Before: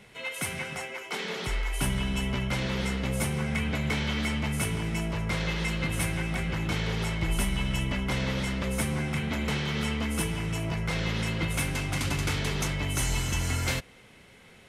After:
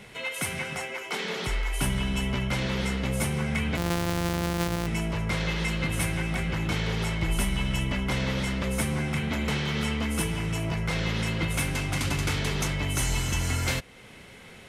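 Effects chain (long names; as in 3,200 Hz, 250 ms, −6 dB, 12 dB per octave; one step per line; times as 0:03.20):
0:03.77–0:04.87: samples sorted by size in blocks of 256 samples
in parallel at 0 dB: downward compressor, threshold −43 dBFS, peak gain reduction 18.5 dB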